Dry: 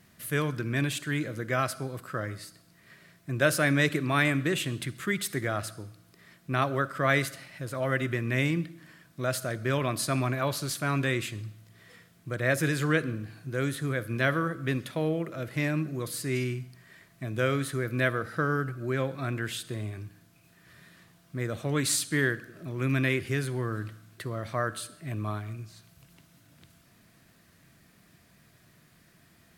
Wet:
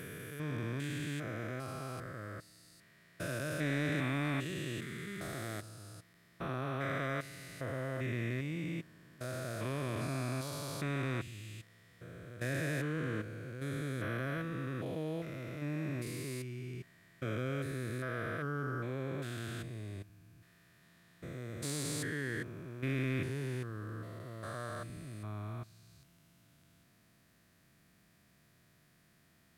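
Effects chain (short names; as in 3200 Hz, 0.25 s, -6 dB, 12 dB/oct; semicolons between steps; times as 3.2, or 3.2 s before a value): stepped spectrum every 0.4 s; in parallel at -9 dB: hard clip -24 dBFS, distortion -17 dB; on the sum: gain -8.5 dB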